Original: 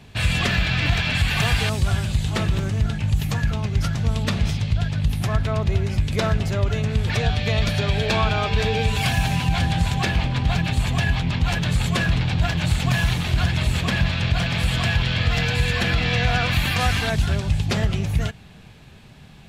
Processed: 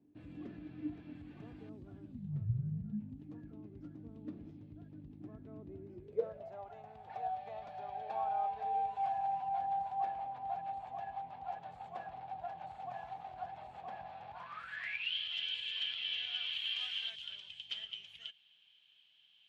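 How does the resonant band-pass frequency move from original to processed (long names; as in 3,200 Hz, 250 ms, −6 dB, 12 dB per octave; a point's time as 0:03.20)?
resonant band-pass, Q 19
0:02.09 300 Hz
0:02.46 110 Hz
0:03.24 300 Hz
0:05.85 300 Hz
0:06.59 770 Hz
0:14.27 770 Hz
0:15.14 3,100 Hz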